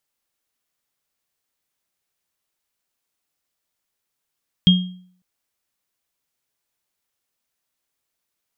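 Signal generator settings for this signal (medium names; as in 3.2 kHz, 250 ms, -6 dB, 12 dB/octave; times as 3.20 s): sine partials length 0.55 s, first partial 182 Hz, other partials 3.24 kHz, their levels -3 dB, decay 0.56 s, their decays 0.37 s, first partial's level -7.5 dB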